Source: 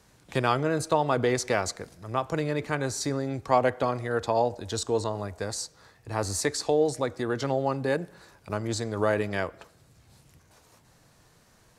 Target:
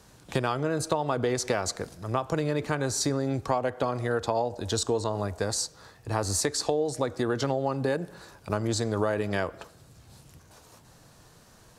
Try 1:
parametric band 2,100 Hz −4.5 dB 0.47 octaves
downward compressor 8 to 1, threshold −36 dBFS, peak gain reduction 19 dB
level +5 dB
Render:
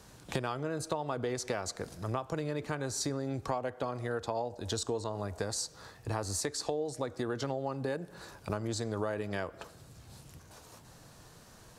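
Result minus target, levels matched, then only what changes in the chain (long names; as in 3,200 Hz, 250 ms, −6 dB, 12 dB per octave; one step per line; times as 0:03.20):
downward compressor: peak gain reduction +7.5 dB
change: downward compressor 8 to 1, threshold −27.5 dBFS, peak gain reduction 11.5 dB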